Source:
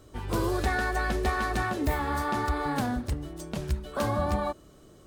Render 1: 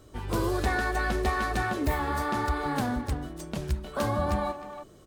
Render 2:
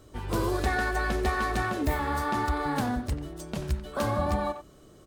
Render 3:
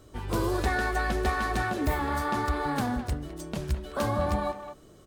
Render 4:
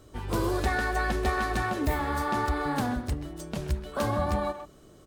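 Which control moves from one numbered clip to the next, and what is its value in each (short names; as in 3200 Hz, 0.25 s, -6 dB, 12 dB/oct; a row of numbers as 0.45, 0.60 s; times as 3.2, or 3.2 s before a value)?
speakerphone echo, time: 310, 90, 210, 130 ms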